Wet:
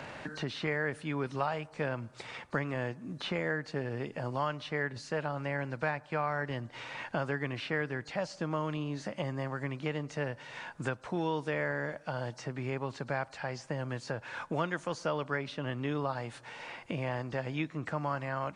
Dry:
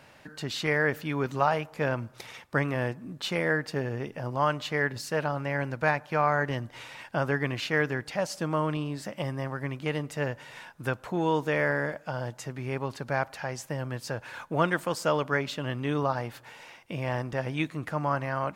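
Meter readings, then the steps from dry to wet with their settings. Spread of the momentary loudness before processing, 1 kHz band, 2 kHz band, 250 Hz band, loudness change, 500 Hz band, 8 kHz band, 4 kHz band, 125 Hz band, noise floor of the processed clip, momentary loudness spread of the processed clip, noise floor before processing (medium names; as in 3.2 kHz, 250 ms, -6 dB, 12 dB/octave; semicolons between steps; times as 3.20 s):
10 LU, -6.5 dB, -6.0 dB, -4.5 dB, -6.0 dB, -5.5 dB, -9.0 dB, -5.5 dB, -5.0 dB, -55 dBFS, 6 LU, -54 dBFS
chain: knee-point frequency compression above 3.9 kHz 1.5:1; three bands compressed up and down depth 70%; trim -6 dB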